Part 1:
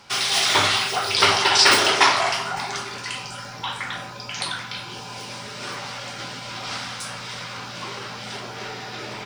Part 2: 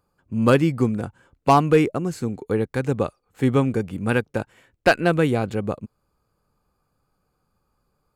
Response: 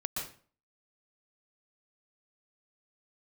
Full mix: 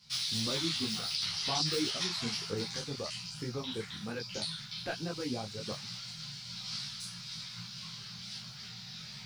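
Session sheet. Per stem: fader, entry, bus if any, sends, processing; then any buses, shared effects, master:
-3.0 dB, 0.00 s, no send, FFT filter 110 Hz 0 dB, 160 Hz +12 dB, 300 Hz -27 dB, 2.9 kHz -4 dB, 4.3 kHz +7 dB, 7.8 kHz -2 dB, 12 kHz +3 dB; compression 10:1, threshold -21 dBFS, peak gain reduction 14 dB; three-phase chorus
-8.0 dB, 0.00 s, no send, reverb removal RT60 1.7 s; peak limiter -17.5 dBFS, peak gain reduction 10.5 dB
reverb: none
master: detune thickener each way 41 cents

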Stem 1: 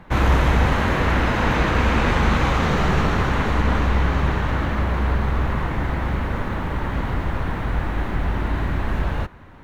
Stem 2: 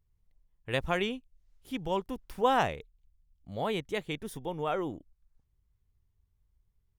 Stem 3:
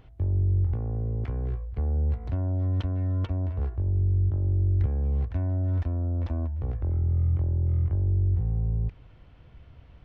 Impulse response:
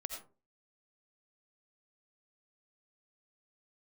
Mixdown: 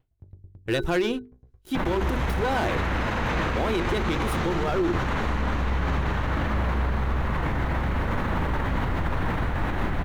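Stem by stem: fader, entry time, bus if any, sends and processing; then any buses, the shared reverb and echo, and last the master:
-9.5 dB, 1.75 s, no send, level flattener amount 100%
-1.5 dB, 0.00 s, no send, waveshaping leveller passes 3; small resonant body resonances 350/1500/3900 Hz, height 15 dB, ringing for 95 ms
-12.0 dB, 0.00 s, no send, sawtooth tremolo in dB decaying 9.1 Hz, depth 30 dB; auto duck -6 dB, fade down 0.75 s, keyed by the second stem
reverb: none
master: hum notches 50/100/150/200/250/300/350/400/450 Hz; peak limiter -16.5 dBFS, peak gain reduction 10.5 dB

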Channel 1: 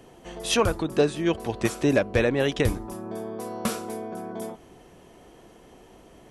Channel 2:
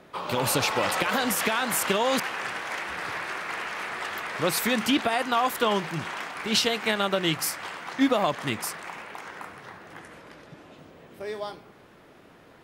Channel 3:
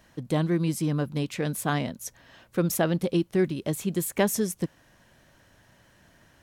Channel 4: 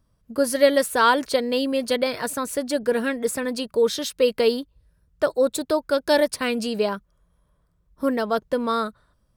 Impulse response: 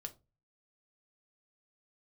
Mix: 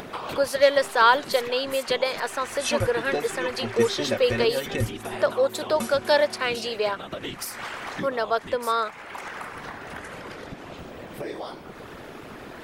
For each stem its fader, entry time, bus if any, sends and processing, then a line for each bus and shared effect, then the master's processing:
-1.5 dB, 2.15 s, no send, inharmonic resonator 110 Hz, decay 0.21 s, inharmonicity 0.03; harmonic-percussive split percussive +9 dB
-4.5 dB, 0.00 s, no send, compression 6:1, threshold -31 dBFS, peak gain reduction 13.5 dB; whisper effect
-16.0 dB, 0.50 s, no send, robot voice 397 Hz
+1.0 dB, 0.00 s, no send, three-band isolator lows -23 dB, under 420 Hz, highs -15 dB, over 6.4 kHz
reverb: none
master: upward compressor, threshold -25 dBFS

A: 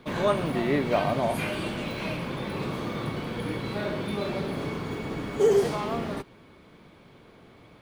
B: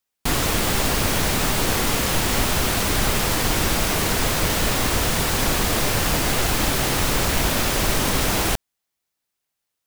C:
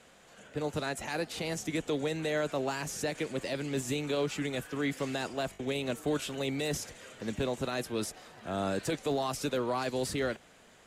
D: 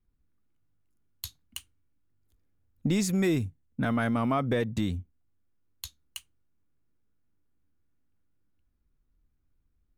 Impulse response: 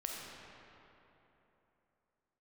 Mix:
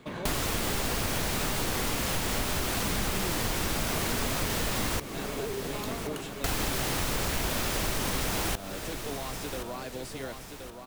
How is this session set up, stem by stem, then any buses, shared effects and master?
-1.5 dB, 0.00 s, no send, echo send -5 dB, compression 4:1, threshold -34 dBFS, peak gain reduction 14.5 dB
-0.5 dB, 0.00 s, muted 5.00–6.44 s, no send, echo send -17 dB, none
-7.0 dB, 0.00 s, no send, echo send -7.5 dB, none
-4.5 dB, 0.00 s, no send, no echo send, none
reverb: none
echo: feedback delay 1074 ms, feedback 42%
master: compression 3:1, threshold -29 dBFS, peak gain reduction 10 dB

